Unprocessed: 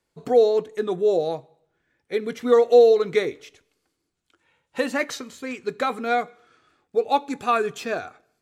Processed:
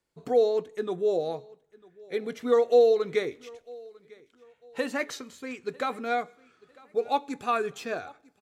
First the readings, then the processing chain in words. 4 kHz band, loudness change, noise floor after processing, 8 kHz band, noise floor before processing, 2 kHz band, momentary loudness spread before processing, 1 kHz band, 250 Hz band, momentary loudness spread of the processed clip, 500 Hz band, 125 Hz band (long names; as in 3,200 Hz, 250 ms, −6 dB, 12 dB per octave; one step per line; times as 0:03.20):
−5.5 dB, −5.5 dB, −68 dBFS, −5.5 dB, −78 dBFS, −5.5 dB, 15 LU, −5.5 dB, −5.5 dB, 21 LU, −5.5 dB, can't be measured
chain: repeating echo 949 ms, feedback 32%, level −24 dB
level −5.5 dB